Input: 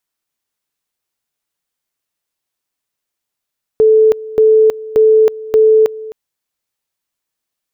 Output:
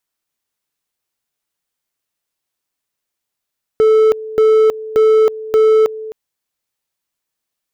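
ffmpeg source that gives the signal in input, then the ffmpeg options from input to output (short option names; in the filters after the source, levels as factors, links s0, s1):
-f lavfi -i "aevalsrc='pow(10,(-5-19*gte(mod(t,0.58),0.32))/20)*sin(2*PI*437*t)':d=2.32:s=44100"
-af "volume=2.51,asoftclip=hard,volume=0.398"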